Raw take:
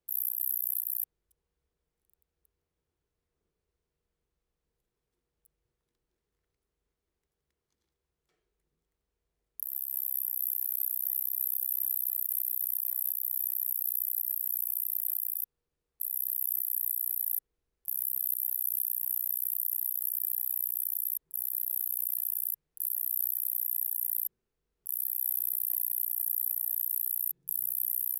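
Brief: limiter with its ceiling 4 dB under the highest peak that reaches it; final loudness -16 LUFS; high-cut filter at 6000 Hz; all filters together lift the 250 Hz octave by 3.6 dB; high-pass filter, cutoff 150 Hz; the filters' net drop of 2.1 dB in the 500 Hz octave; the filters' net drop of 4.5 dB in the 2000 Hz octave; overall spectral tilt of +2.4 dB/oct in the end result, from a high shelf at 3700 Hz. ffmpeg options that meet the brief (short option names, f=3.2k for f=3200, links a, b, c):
-af "highpass=150,lowpass=6k,equalizer=f=250:t=o:g=7.5,equalizer=f=500:t=o:g=-5,equalizer=f=2k:t=o:g=-8,highshelf=f=3.7k:g=8,volume=26dB,alimiter=limit=-4.5dB:level=0:latency=1"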